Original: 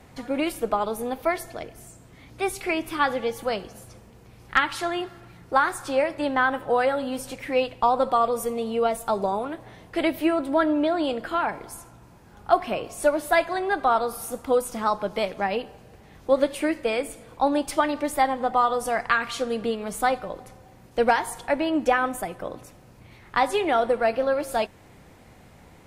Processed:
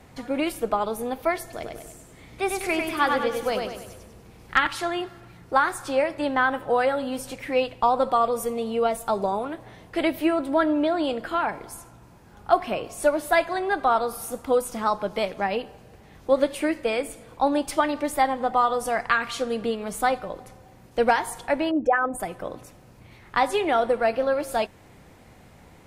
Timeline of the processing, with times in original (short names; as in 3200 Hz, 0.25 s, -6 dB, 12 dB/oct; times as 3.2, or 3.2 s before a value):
1.43–4.67 feedback echo 98 ms, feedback 45%, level -4 dB
21.71–22.2 formant sharpening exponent 2